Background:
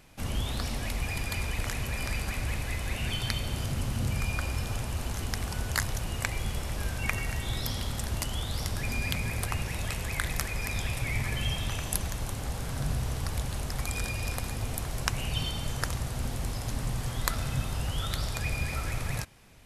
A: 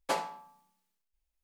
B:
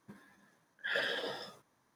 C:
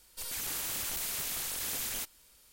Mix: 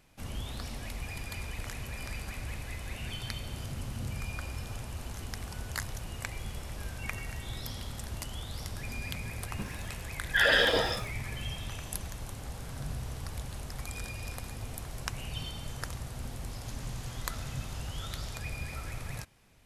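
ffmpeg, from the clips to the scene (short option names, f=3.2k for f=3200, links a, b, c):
-filter_complex "[0:a]volume=-7dB[a];[2:a]alimiter=level_in=25dB:limit=-1dB:release=50:level=0:latency=1[b];[3:a]aresample=16000,aresample=44100[c];[b]atrim=end=1.95,asetpts=PTS-STARTPTS,volume=-12.5dB,afade=t=in:d=0.004:c=hsin,afade=t=out:st=1.946:d=0.004:c=hsin,adelay=9500[d];[c]atrim=end=2.52,asetpts=PTS-STARTPTS,volume=-13dB,afade=t=in:d=0.004:c=hsin,afade=t=out:st=2.516:d=0.004:c=hsin,adelay=16330[e];[a][d][e]amix=inputs=3:normalize=0"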